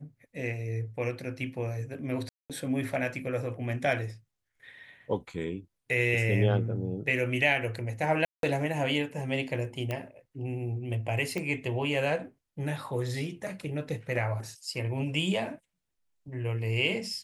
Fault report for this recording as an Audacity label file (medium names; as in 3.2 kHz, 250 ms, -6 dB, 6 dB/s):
2.290000	2.500000	dropout 207 ms
8.250000	8.430000	dropout 182 ms
9.910000	9.910000	pop -19 dBFS
11.380000	11.380000	pop -20 dBFS